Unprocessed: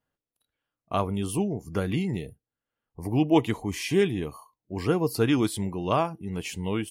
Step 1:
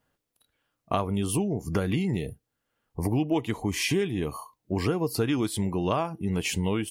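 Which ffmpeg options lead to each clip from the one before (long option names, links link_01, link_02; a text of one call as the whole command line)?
ffmpeg -i in.wav -af "acompressor=threshold=-33dB:ratio=5,volume=9dB" out.wav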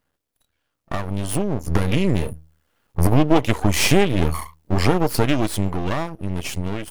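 ffmpeg -i in.wav -af "dynaudnorm=framelen=260:gausssize=13:maxgain=11dB,equalizer=frequency=78:width=8:gain=12,aeval=exprs='max(val(0),0)':channel_layout=same,volume=3.5dB" out.wav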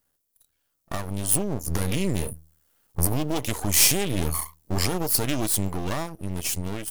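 ffmpeg -i in.wav -filter_complex "[0:a]acrossover=split=3400[link_01][link_02];[link_01]alimiter=limit=-10dB:level=0:latency=1[link_03];[link_02]crystalizer=i=3:c=0[link_04];[link_03][link_04]amix=inputs=2:normalize=0,volume=-5dB" out.wav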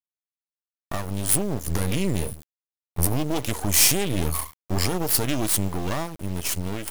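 ffmpeg -i in.wav -filter_complex "[0:a]asplit=2[link_01][link_02];[link_02]asoftclip=type=tanh:threshold=-17.5dB,volume=-9dB[link_03];[link_01][link_03]amix=inputs=2:normalize=0,acrusher=bits=4:dc=4:mix=0:aa=0.000001,volume=-1dB" out.wav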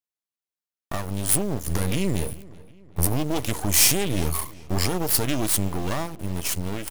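ffmpeg -i in.wav -filter_complex "[0:a]asplit=2[link_01][link_02];[link_02]adelay=379,lowpass=frequency=3600:poles=1,volume=-21dB,asplit=2[link_03][link_04];[link_04]adelay=379,lowpass=frequency=3600:poles=1,volume=0.51,asplit=2[link_05][link_06];[link_06]adelay=379,lowpass=frequency=3600:poles=1,volume=0.51,asplit=2[link_07][link_08];[link_08]adelay=379,lowpass=frequency=3600:poles=1,volume=0.51[link_09];[link_01][link_03][link_05][link_07][link_09]amix=inputs=5:normalize=0" out.wav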